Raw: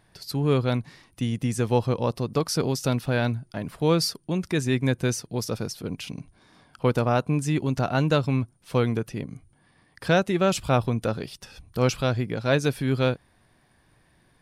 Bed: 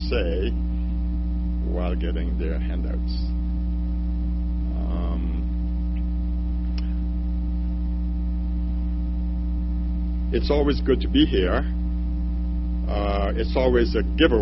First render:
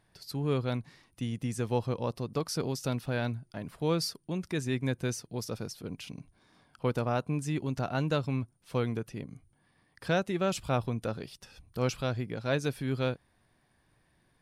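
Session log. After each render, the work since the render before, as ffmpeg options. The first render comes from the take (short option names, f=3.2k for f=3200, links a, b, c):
-af "volume=-7.5dB"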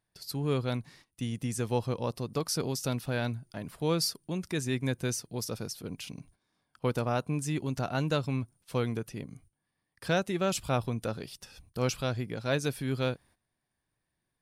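-af "agate=range=-15dB:threshold=-57dB:ratio=16:detection=peak,highshelf=f=5.3k:g=7.5"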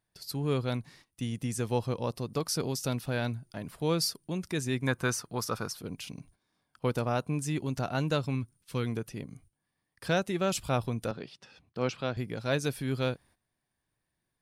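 -filter_complex "[0:a]asettb=1/sr,asplit=3[a][b][c];[a]atrim=end=4.874[d];[b]atrim=start=4.87:end=5.78,asetpts=PTS-STARTPTS,afade=t=in:d=0.004:c=qsin,afade=t=out:st=0.906:d=0.004:c=qsin,equalizer=f=1.2k:t=o:w=1.1:g=14.5[e];[c]atrim=start=5.776[f];[d][e]acrossfade=d=0.004:c1=hsin:c2=qsin[g];[g][f]acrossfade=d=0.004:c1=qsin:c2=hsin,asettb=1/sr,asplit=3[h][i][j];[h]atrim=end=8.354[k];[i]atrim=start=8.35:end=8.86,asetpts=PTS-STARTPTS,afade=t=in:d=0.004:c=qsin,afade=t=out:st=0.506:d=0.004:c=qsin,equalizer=f=680:w=1.6:g=-10.5[l];[j]atrim=start=8.856[m];[k][l]acrossfade=d=0.004:c1=hsin:c2=qsin[n];[n][m]acrossfade=d=0.004:c1=qsin:c2=hsin,asettb=1/sr,asplit=3[o][p][q];[o]atrim=end=11.114[r];[p]atrim=start=11.11:end=12.17,asetpts=PTS-STARTPTS,afade=t=in:d=0.004:c=qsin,afade=t=out:st=1.056:d=0.004:c=qsin,highpass=150,lowpass=3.6k[s];[q]atrim=start=12.166[t];[r][s]acrossfade=d=0.004:c1=hsin:c2=qsin[u];[u][t]acrossfade=d=0.004:c1=qsin:c2=hsin"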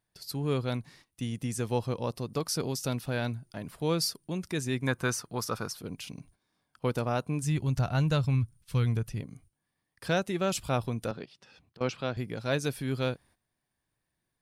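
-filter_complex "[0:a]asplit=3[a][b][c];[a]afade=t=out:st=7.42:d=0.02[d];[b]asubboost=boost=5.5:cutoff=120,afade=t=in:st=7.42:d=0.02,afade=t=out:st=9.2:d=0.02[e];[c]afade=t=in:st=9.2:d=0.02[f];[d][e][f]amix=inputs=3:normalize=0,asettb=1/sr,asplit=3[g][h][i];[g]atrim=end=11.254[j];[h]atrim=start=11.25:end=11.81,asetpts=PTS-STARTPTS,afade=t=in:d=0.004:c=qsin,afade=t=out:st=0.556:d=0.004:c=qsin,acompressor=threshold=-52dB:ratio=5:attack=3.2:release=140:knee=1:detection=peak[k];[i]atrim=start=11.806[l];[j][k]acrossfade=d=0.004:c1=hsin:c2=qsin[m];[m][l]acrossfade=d=0.004:c1=qsin:c2=hsin"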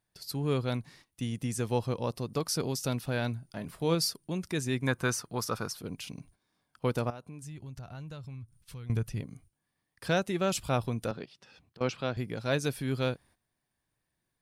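-filter_complex "[0:a]asettb=1/sr,asplit=3[a][b][c];[a]atrim=end=3.404[d];[b]atrim=start=3.4:end=3.95,asetpts=PTS-STARTPTS,afade=t=in:d=0.004:c=qsin,afade=t=out:st=0.546:d=0.004:c=qsin,asplit=2[e][f];[f]adelay=24,volume=-11dB[g];[e][g]amix=inputs=2:normalize=0,atrim=end_sample=24255[h];[c]atrim=start=3.946[i];[d][h]acrossfade=d=0.004:c1=hsin:c2=qsin[j];[j][i]acrossfade=d=0.004:c1=qsin:c2=hsin,asettb=1/sr,asplit=3[k][l][m];[k]atrim=end=7.104[n];[l]atrim=start=7.1:end=8.9,asetpts=PTS-STARTPTS,afade=t=in:d=0.004:c=qsin,afade=t=out:st=1.796:d=0.004:c=qsin,acompressor=threshold=-46dB:ratio=3:attack=3.2:release=140:knee=1:detection=peak[o];[m]atrim=start=8.896[p];[n][o]acrossfade=d=0.004:c1=hsin:c2=qsin[q];[q][p]acrossfade=d=0.004:c1=qsin:c2=hsin"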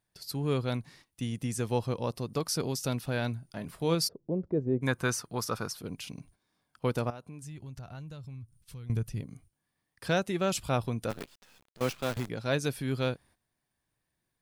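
-filter_complex "[0:a]asplit=3[a][b][c];[a]afade=t=out:st=4.07:d=0.02[d];[b]lowpass=f=510:t=q:w=2.4,afade=t=in:st=4.07:d=0.02,afade=t=out:st=4.81:d=0.02[e];[c]afade=t=in:st=4.81:d=0.02[f];[d][e][f]amix=inputs=3:normalize=0,asettb=1/sr,asplit=3[g][h][i];[g]atrim=end=7.994[j];[h]atrim=start=7.99:end=9.29,asetpts=PTS-STARTPTS,afade=t=in:d=0.004:c=qsin,afade=t=out:st=1.296:d=0.004:c=qsin,equalizer=f=1.4k:w=0.35:g=-4.5[k];[i]atrim=start=9.286[l];[j][k]acrossfade=d=0.004:c1=hsin:c2=qsin[m];[m][l]acrossfade=d=0.004:c1=qsin:c2=hsin,asplit=3[n][o][p];[n]afade=t=out:st=11.09:d=0.02[q];[o]acrusher=bits=7:dc=4:mix=0:aa=0.000001,afade=t=in:st=11.09:d=0.02,afade=t=out:st=12.28:d=0.02[r];[p]afade=t=in:st=12.28:d=0.02[s];[q][r][s]amix=inputs=3:normalize=0"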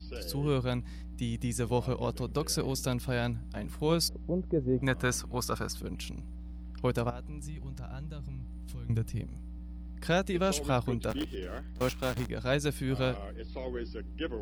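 -filter_complex "[1:a]volume=-18dB[a];[0:a][a]amix=inputs=2:normalize=0"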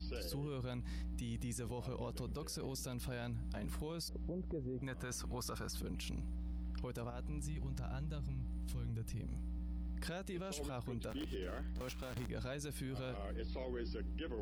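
-af "acompressor=threshold=-33dB:ratio=10,alimiter=level_in=11dB:limit=-24dB:level=0:latency=1:release=15,volume=-11dB"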